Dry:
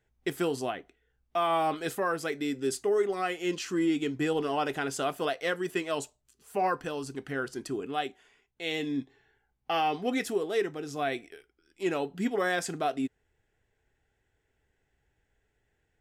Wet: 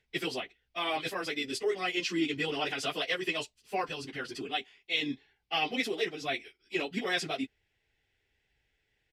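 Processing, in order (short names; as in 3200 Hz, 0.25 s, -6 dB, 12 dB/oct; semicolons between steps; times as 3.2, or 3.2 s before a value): downsampling 32000 Hz; band shelf 3300 Hz +11.5 dB; plain phase-vocoder stretch 0.57×; gain -1.5 dB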